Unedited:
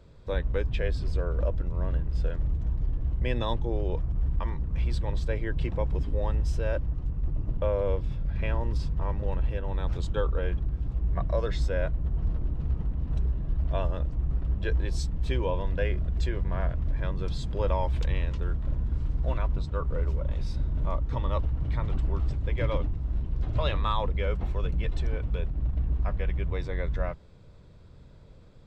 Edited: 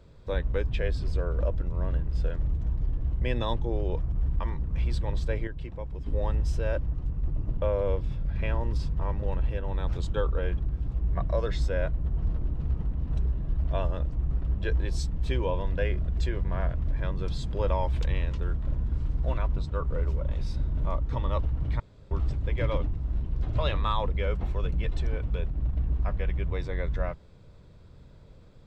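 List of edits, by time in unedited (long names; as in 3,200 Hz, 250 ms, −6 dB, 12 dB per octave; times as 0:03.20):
0:05.47–0:06.06: clip gain −8.5 dB
0:21.80–0:22.11: fill with room tone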